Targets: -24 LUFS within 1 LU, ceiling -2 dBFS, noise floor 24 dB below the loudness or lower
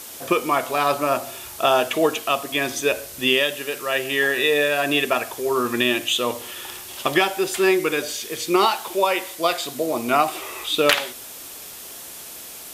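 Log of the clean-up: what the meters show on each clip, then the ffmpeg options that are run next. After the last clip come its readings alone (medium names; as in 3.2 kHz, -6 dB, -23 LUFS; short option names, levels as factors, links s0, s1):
noise floor -38 dBFS; noise floor target -45 dBFS; loudness -21.0 LUFS; peak level -3.0 dBFS; loudness target -24.0 LUFS
-> -af "afftdn=nr=7:nf=-38"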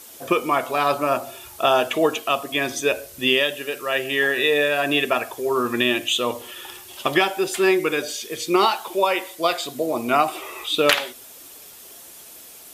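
noise floor -43 dBFS; noise floor target -46 dBFS
-> -af "afftdn=nr=6:nf=-43"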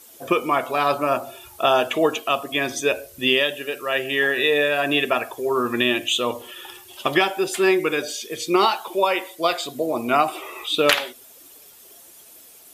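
noise floor -47 dBFS; loudness -21.5 LUFS; peak level -3.0 dBFS; loudness target -24.0 LUFS
-> -af "volume=0.75"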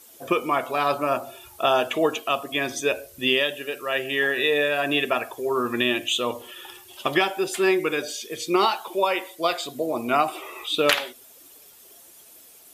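loudness -24.0 LUFS; peak level -5.5 dBFS; noise floor -50 dBFS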